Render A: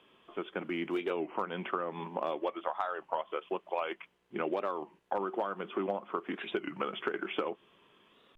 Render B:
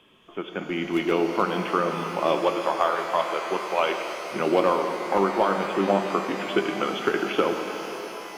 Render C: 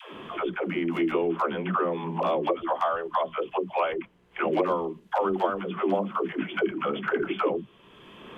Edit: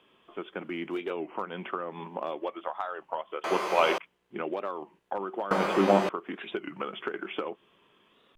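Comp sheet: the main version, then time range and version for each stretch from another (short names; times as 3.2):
A
3.44–3.98 from B
5.51–6.09 from B
not used: C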